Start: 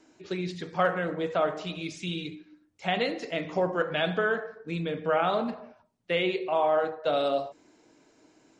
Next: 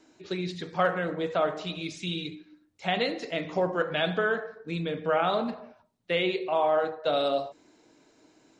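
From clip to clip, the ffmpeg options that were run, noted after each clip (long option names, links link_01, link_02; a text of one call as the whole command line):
ffmpeg -i in.wav -af "equalizer=frequency=3900:width=5.4:gain=4.5" out.wav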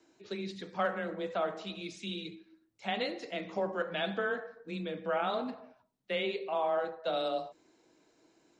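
ffmpeg -i in.wav -af "afreqshift=18,volume=-6.5dB" out.wav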